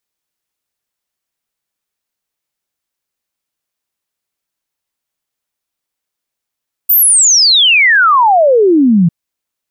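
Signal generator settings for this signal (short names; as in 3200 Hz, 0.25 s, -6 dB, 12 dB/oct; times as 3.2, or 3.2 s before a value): log sweep 15000 Hz -> 160 Hz 2.20 s -5 dBFS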